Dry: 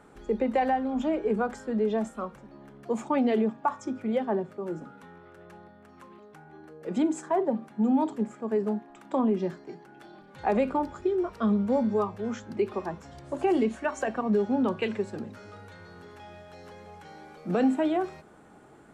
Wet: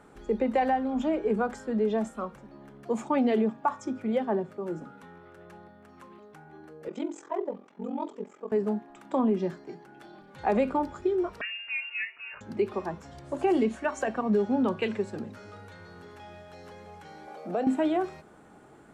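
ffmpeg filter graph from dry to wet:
-filter_complex "[0:a]asettb=1/sr,asplit=3[s0][s1][s2];[s0]atrim=end=6.884[s3];[s1]atrim=start=6.88:end=8.52,asetpts=PTS-STARTPTS,afade=t=in:d=0.004:c=qsin,afade=t=out:st=1.636:d=0.004:c=qsin,highpass=400,equalizer=f=450:t=q:w=4:g=4,equalizer=f=750:t=q:w=4:g=-8,equalizer=f=1600:t=q:w=4:g=-7,equalizer=f=4300:t=q:w=4:g=-5,lowpass=f=6800:w=0.5412,lowpass=f=6800:w=1.3066,aeval=exprs='val(0)*sin(2*PI*22*n/s)':c=same[s4];[s2]atrim=start=8.516[s5];[s3][s4]acrossfade=d=0.004:c1=hsin:c2=qsin[s6];[s6][s5]acrossfade=d=0.004:c1=qsin:c2=hsin,asettb=1/sr,asplit=3[s7][s8][s9];[s7]atrim=end=11.414[s10];[s8]atrim=start=11.41:end=12.41,asetpts=PTS-STARTPTS,afade=t=in:d=0.004:c=qsin,afade=t=out:st=0.996:d=0.004:c=qsin,highpass=f=1100:p=1,lowpass=f=2600:t=q:w=0.5098,lowpass=f=2600:t=q:w=0.6013,lowpass=f=2600:t=q:w=0.9,lowpass=f=2600:t=q:w=2.563,afreqshift=-3000[s11];[s9]atrim=start=12.406[s12];[s10][s11]acrossfade=d=0.004:c1=hsin:c2=qsin[s13];[s13][s12]acrossfade=d=0.004:c1=qsin:c2=hsin,asettb=1/sr,asplit=3[s14][s15][s16];[s14]atrim=end=17.274[s17];[s15]atrim=start=17.27:end=17.67,asetpts=PTS-STARTPTS,afade=t=in:d=0.004:c=qsin,afade=t=out:st=0.396:d=0.004:c=qsin,highpass=210,acompressor=threshold=0.0141:ratio=2:attack=3.2:release=140:knee=1:detection=peak,equalizer=f=660:w=1.8:g=11[s18];[s16]atrim=start=17.666[s19];[s17][s18]acrossfade=d=0.004:c1=hsin:c2=qsin[s20];[s20][s19]acrossfade=d=0.004:c1=qsin:c2=hsin"

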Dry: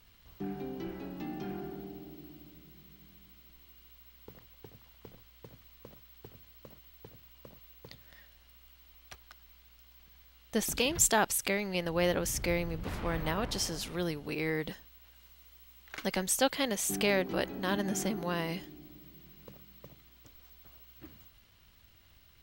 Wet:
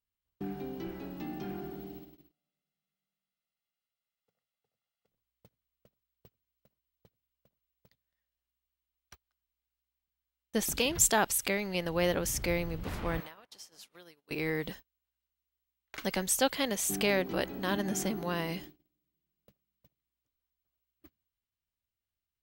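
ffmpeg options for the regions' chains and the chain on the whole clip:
-filter_complex "[0:a]asettb=1/sr,asplit=3[s0][s1][s2];[s0]atrim=end=2.314[s3];[s1]atrim=start=2.31:end=5.08,asetpts=PTS-STARTPTS,afade=t=in:d=0.004:c=qsin,afade=t=out:st=2.766:d=0.004:c=qsin,highpass=230,aecho=1:1:1.5:0.86,atrim=end_sample=122157[s4];[s2]atrim=start=5.076[s5];[s3][s4]acrossfade=d=0.004:c1=hsin:c2=qsin[s6];[s6][s5]acrossfade=d=0.004:c1=qsin:c2=hsin,asettb=1/sr,asplit=3[s7][s8][s9];[s7]atrim=end=13.204[s10];[s8]atrim=start=13.2:end=14.31,asetpts=PTS-STARTPTS,afade=t=in:d=0.004:c=qsin,afade=t=out:st=1.106:d=0.004:c=qsin,highpass=f=770:p=1,acompressor=threshold=0.00708:ratio=12:attack=3.2:release=140:knee=1:detection=peak[s11];[s9]atrim=start=14.306[s12];[s10][s11]acrossfade=d=0.004:c1=hsin:c2=qsin[s13];[s13][s12]acrossfade=d=0.004:c1=qsin:c2=hsin,agate=range=0.0251:threshold=0.00501:ratio=16:detection=peak,highshelf=f=11000:g=3"

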